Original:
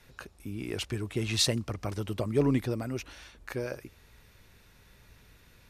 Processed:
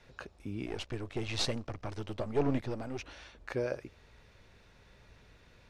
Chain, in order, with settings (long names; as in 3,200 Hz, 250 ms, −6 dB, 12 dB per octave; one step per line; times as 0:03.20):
0:00.66–0:02.99: gain on one half-wave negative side −12 dB
low-pass filter 5,700 Hz 12 dB per octave
parametric band 600 Hz +5 dB 1.2 octaves
level −2 dB